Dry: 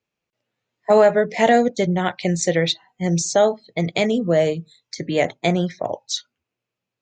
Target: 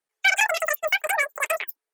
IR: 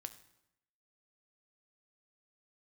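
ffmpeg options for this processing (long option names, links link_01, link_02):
-af "flanger=delay=0.3:depth=7.4:regen=-87:speed=0.72:shape=triangular,asetrate=160083,aresample=44100"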